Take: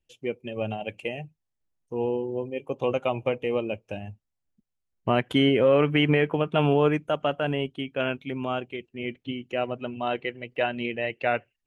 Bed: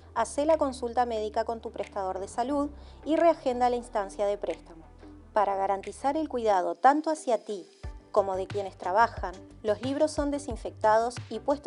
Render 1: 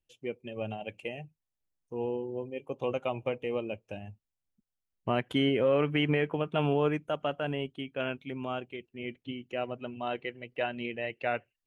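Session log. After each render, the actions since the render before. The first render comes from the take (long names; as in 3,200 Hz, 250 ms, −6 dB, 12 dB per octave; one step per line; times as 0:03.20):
level −6 dB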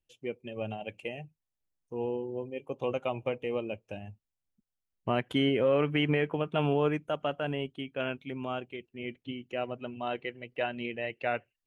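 no processing that can be heard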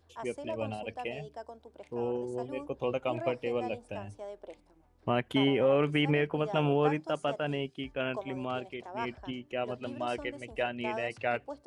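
mix in bed −15 dB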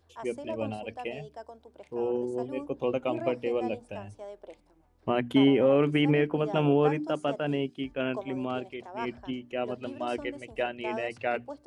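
mains-hum notches 60/120/180/240/300 Hz
dynamic equaliser 280 Hz, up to +7 dB, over −42 dBFS, Q 0.98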